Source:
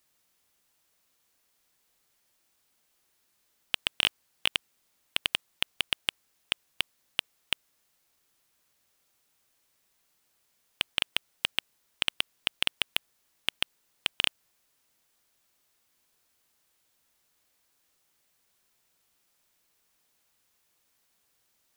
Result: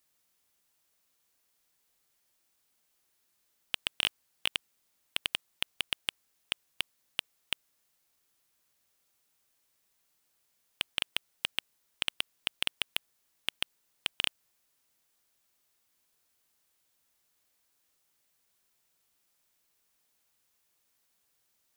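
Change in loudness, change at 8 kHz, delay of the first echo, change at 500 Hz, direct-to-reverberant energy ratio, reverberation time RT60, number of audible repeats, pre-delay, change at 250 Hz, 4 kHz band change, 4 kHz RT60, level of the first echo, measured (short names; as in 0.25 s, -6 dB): -4.0 dB, -2.5 dB, none, -4.5 dB, none, none, none, none, -4.5 dB, -4.0 dB, none, none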